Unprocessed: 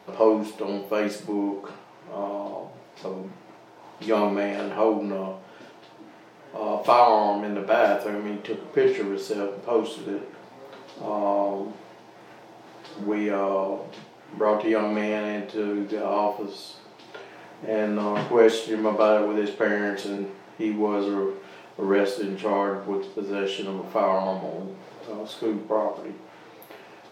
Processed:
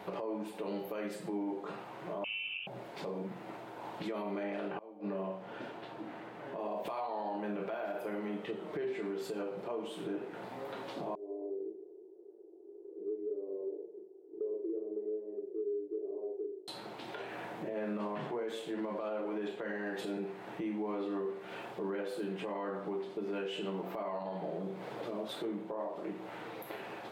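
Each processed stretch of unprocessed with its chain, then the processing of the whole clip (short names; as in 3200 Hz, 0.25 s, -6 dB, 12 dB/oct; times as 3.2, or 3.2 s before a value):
2.24–2.67 bell 1500 Hz -7.5 dB 0.5 oct + inverted band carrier 3300 Hz
4.43–6.6 high shelf 5800 Hz -9.5 dB + flipped gate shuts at -17 dBFS, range -27 dB
11.15–16.68 Butterworth band-pass 390 Hz, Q 5.3 + doubler 37 ms -4 dB
whole clip: compressor 2.5:1, threshold -41 dBFS; limiter -32.5 dBFS; bell 5600 Hz -9.5 dB 0.71 oct; gain +3 dB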